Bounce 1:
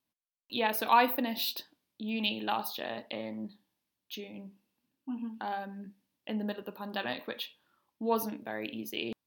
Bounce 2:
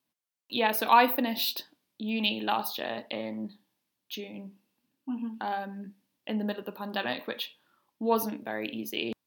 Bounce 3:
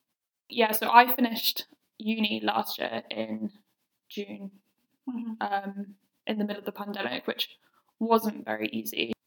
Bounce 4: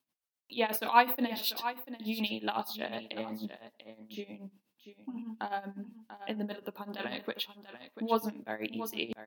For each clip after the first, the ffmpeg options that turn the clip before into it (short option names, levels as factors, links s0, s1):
-af "highpass=100,volume=1.5"
-af "tremolo=f=8.1:d=0.83,volume=2"
-af "aecho=1:1:690:0.251,volume=0.473"